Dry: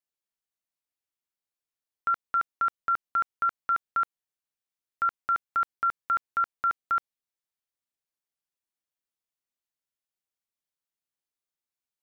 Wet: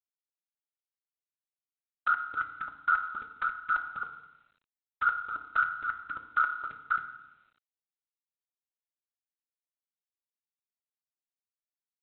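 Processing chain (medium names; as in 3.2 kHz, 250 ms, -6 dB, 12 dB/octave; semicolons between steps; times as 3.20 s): peaking EQ 480 Hz -2 dB 0.98 oct; 3.61–5.05 s: transient shaper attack +3 dB, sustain -1 dB; whisper effect; phase shifter stages 2, 2.3 Hz, lowest notch 170–2200 Hz; FDN reverb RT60 0.96 s, low-frequency decay 1.45×, high-frequency decay 0.25×, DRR 5.5 dB; trim -1.5 dB; G.726 24 kbps 8 kHz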